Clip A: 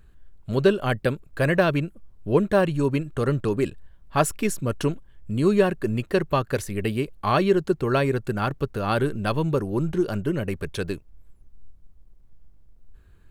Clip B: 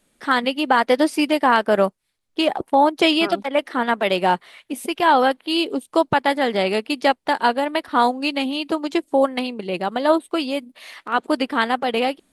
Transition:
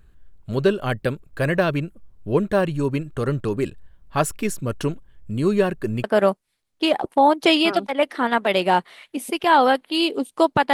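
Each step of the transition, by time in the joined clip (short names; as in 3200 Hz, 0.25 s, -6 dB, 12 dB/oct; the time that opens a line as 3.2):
clip A
6.04 switch to clip B from 1.6 s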